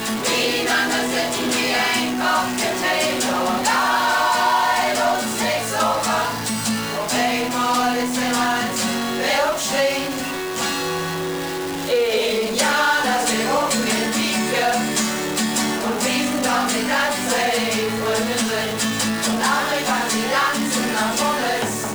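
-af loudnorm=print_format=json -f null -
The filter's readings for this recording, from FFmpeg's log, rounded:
"input_i" : "-19.6",
"input_tp" : "-6.2",
"input_lra" : "2.2",
"input_thresh" : "-29.6",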